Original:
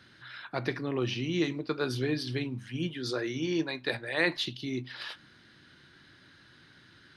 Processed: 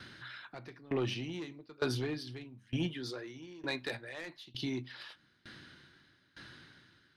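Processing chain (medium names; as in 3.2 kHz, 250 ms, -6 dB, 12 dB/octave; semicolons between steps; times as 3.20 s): in parallel at +2 dB: compression, threshold -45 dBFS, peak gain reduction 21.5 dB; on the sum: saturation -23.5 dBFS, distortion -14 dB; sawtooth tremolo in dB decaying 1.1 Hz, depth 24 dB; trim +1 dB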